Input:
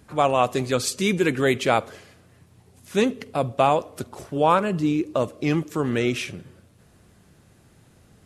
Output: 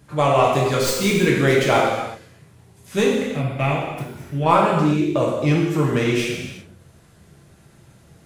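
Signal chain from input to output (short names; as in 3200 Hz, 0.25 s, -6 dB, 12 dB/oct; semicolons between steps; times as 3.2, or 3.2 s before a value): tracing distortion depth 0.058 ms; 3.13–4.46 ten-band EQ 500 Hz -9 dB, 1000 Hz -10 dB, 2000 Hz +7 dB, 4000 Hz -6 dB, 8000 Hz -10 dB; non-linear reverb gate 0.4 s falling, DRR -4 dB; gain -1 dB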